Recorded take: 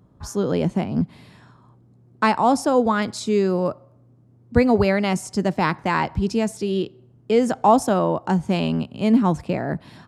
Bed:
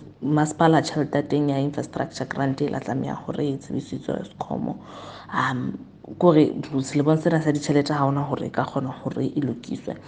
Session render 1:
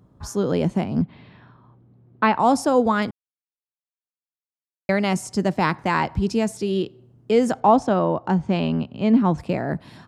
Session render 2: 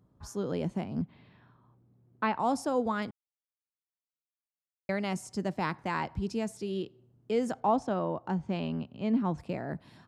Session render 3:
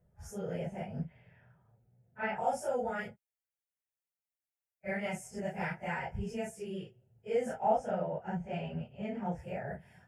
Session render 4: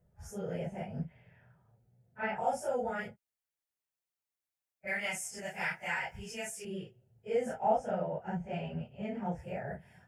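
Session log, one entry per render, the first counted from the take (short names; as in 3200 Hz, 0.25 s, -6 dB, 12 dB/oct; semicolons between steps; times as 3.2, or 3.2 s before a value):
1.02–2.4 LPF 3600 Hz 24 dB/oct; 3.11–4.89 mute; 7.6–9.38 air absorption 130 m
gain -11 dB
phase scrambler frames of 0.1 s; fixed phaser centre 1100 Hz, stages 6
4.87–6.65 tilt shelf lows -9.5 dB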